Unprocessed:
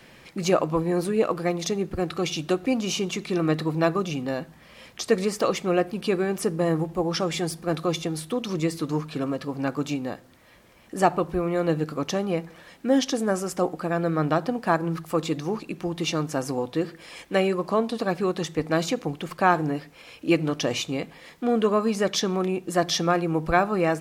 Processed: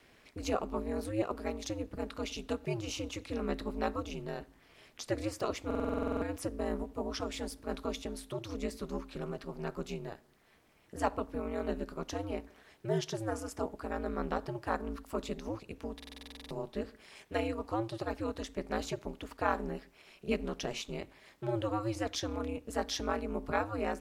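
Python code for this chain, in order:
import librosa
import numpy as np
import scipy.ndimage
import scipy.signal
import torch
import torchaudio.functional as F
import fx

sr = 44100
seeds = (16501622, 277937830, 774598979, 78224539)

y = x * np.sin(2.0 * np.pi * 110.0 * np.arange(len(x)) / sr)
y = fx.buffer_glitch(y, sr, at_s=(5.66, 15.95), block=2048, repeats=11)
y = y * librosa.db_to_amplitude(-8.5)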